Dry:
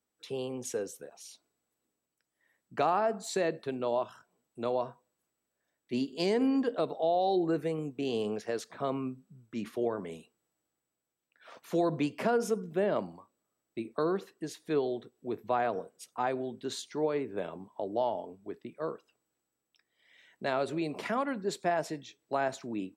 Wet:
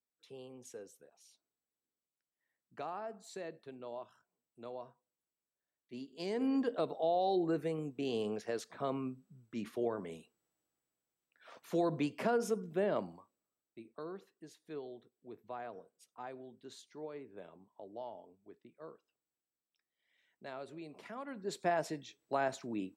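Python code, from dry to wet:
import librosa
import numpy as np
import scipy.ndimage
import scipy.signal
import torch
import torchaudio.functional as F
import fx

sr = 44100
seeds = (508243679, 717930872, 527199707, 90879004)

y = fx.gain(x, sr, db=fx.line((6.07, -14.5), (6.54, -4.0), (13.12, -4.0), (13.8, -15.0), (21.15, -15.0), (21.63, -3.0)))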